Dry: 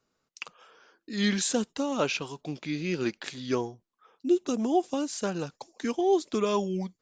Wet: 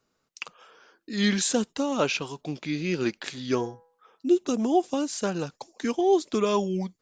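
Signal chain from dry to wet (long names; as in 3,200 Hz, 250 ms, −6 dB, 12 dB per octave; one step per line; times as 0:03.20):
0:03.16–0:04.34: hum removal 164 Hz, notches 12
level +2.5 dB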